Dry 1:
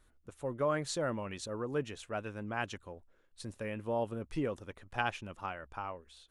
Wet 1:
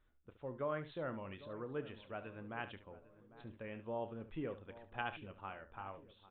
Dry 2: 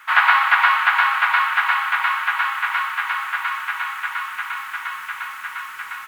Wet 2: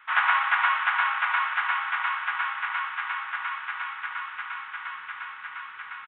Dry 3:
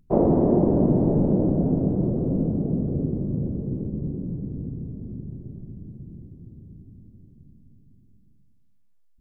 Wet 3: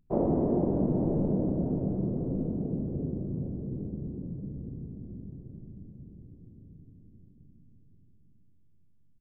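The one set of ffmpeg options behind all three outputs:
-filter_complex "[0:a]asplit=2[s0][s1];[s1]aecho=0:1:31|71:0.2|0.224[s2];[s0][s2]amix=inputs=2:normalize=0,aresample=8000,aresample=44100,asplit=2[s3][s4];[s4]adelay=800,lowpass=f=1300:p=1,volume=0.158,asplit=2[s5][s6];[s6]adelay=800,lowpass=f=1300:p=1,volume=0.5,asplit=2[s7][s8];[s8]adelay=800,lowpass=f=1300:p=1,volume=0.5,asplit=2[s9][s10];[s10]adelay=800,lowpass=f=1300:p=1,volume=0.5[s11];[s5][s7][s9][s11]amix=inputs=4:normalize=0[s12];[s3][s12]amix=inputs=2:normalize=0,volume=0.398"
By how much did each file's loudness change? -7.5 LU, -7.5 LU, -7.5 LU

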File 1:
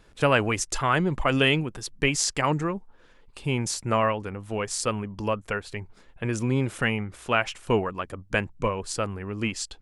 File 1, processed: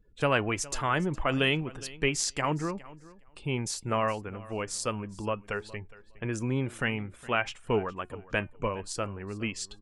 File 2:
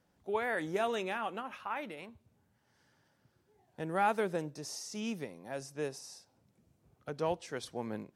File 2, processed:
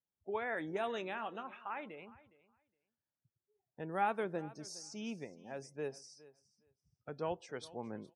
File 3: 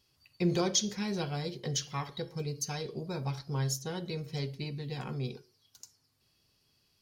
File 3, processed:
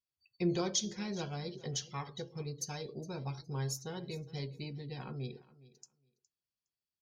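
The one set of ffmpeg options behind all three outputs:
-filter_complex "[0:a]afftdn=nr=24:nf=-52,flanger=delay=2.2:depth=1.3:regen=89:speed=0.52:shape=triangular,asplit=2[s0][s1];[s1]aecho=0:1:413|826:0.1|0.015[s2];[s0][s2]amix=inputs=2:normalize=0"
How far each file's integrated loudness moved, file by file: -4.5 LU, -4.5 LU, -4.5 LU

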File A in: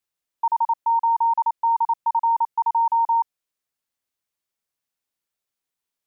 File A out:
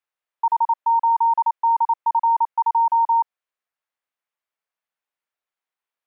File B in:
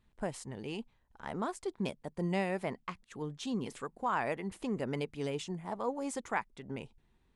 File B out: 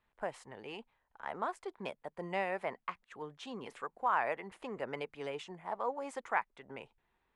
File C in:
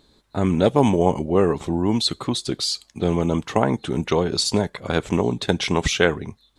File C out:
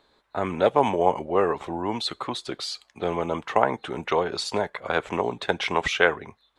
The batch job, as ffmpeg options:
-filter_complex "[0:a]acrossover=split=490 2800:gain=0.158 1 0.2[s0][s1][s2];[s0][s1][s2]amix=inputs=3:normalize=0,volume=1.33"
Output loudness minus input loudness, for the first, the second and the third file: +2.0 LU, -2.0 LU, -4.0 LU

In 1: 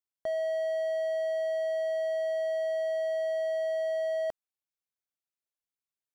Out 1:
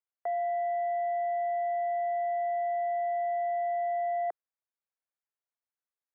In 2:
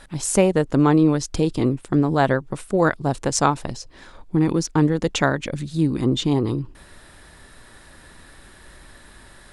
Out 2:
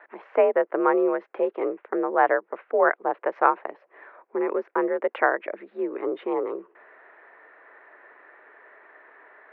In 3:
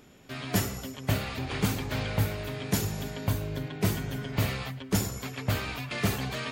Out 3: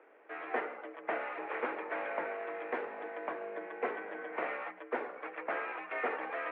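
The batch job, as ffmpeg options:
-af "highpass=f=360:t=q:w=0.5412,highpass=f=360:t=q:w=1.307,lowpass=f=2100:t=q:w=0.5176,lowpass=f=2100:t=q:w=0.7071,lowpass=f=2100:t=q:w=1.932,afreqshift=54"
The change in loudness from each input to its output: 0.0 LU, -4.0 LU, -7.5 LU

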